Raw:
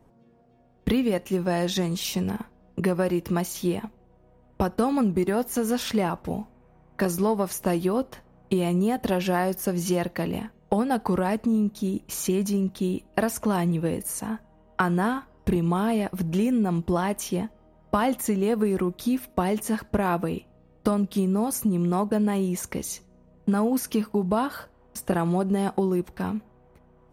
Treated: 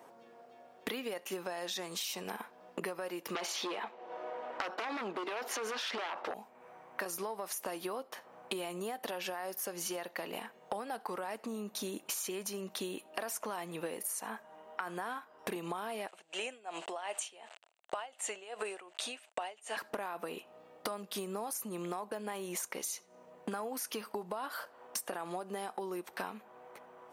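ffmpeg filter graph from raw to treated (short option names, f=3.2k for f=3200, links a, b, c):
-filter_complex "[0:a]asettb=1/sr,asplit=3[a][b][c];[a]atrim=end=3.354[d];[b]atrim=start=3.35:end=6.34,asetpts=PTS-STARTPTS,afade=t=in:d=0.004:c=qsin,afade=t=out:st=2.986:d=0.004:c=qsin,acrossover=split=270 5200:gain=0.126 1 0.0631[e][f][g];[e][f][g]amix=inputs=3:normalize=0,aeval=exprs='0.224*sin(PI/2*3.55*val(0)/0.224)':c=same[h];[c]atrim=start=6.336[i];[d][h]acrossfade=d=0.004:c1=hsin:c2=qsin[j];[j][i]acrossfade=d=0.004:c1=qsin:c2=hsin,asettb=1/sr,asplit=3[k][l][m];[k]atrim=end=16.084[n];[l]atrim=start=16.08:end=19.77,asetpts=PTS-STARTPTS,afade=t=in:d=0.004:c=qsin,afade=t=out:st=3.686:d=0.004:c=qsin,aeval=exprs='val(0)*gte(abs(val(0)),0.00398)':c=same,highpass=500,equalizer=f=680:t=q:w=4:g=6,equalizer=f=1.1k:t=q:w=4:g=-3,equalizer=f=2.8k:t=q:w=4:g=8,equalizer=f=5.4k:t=q:w=4:g=-7,equalizer=f=7.9k:t=q:w=4:g=9,lowpass=f=8.2k:w=0.5412,lowpass=f=8.2k:w=1.3066,aeval=exprs='val(0)*pow(10,-23*(0.5-0.5*cos(2*PI*2.7*n/s))/20)':c=same[o];[m]atrim=start=19.766[p];[n][o]acrossfade=d=0.004:c1=hsin:c2=qsin[q];[q][p]acrossfade=d=0.004:c1=qsin:c2=hsin,highpass=610,alimiter=limit=-22dB:level=0:latency=1:release=28,acompressor=threshold=-46dB:ratio=10,volume=10dB"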